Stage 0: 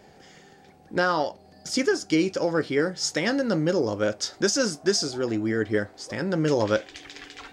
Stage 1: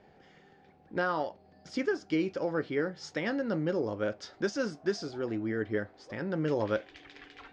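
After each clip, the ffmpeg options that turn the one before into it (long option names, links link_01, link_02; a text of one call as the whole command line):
ffmpeg -i in.wav -af "lowpass=3100,volume=-7dB" out.wav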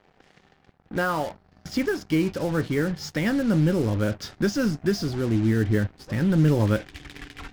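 ffmpeg -i in.wav -af "aeval=exprs='val(0)+0.5*0.00668*sgn(val(0))':channel_layout=same,acrusher=bits=6:mix=0:aa=0.5,asubboost=boost=5.5:cutoff=210,volume=5dB" out.wav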